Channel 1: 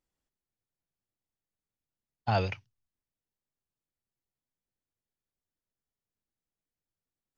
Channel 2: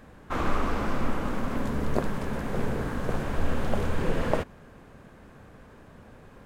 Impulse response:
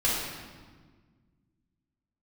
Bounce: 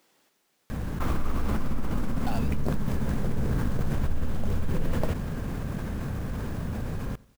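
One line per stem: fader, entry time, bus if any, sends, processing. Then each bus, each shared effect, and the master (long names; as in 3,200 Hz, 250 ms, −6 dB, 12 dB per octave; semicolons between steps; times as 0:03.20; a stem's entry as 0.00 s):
−5.0 dB, 0.00 s, no send, no echo send, Bessel high-pass filter 290 Hz, order 4; multiband upward and downward compressor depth 100%
−13.5 dB, 0.70 s, no send, echo send −22.5 dB, bass and treble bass +11 dB, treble +8 dB; envelope flattener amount 70%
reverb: not used
echo: repeating echo 90 ms, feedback 44%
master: converter with an unsteady clock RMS 0.023 ms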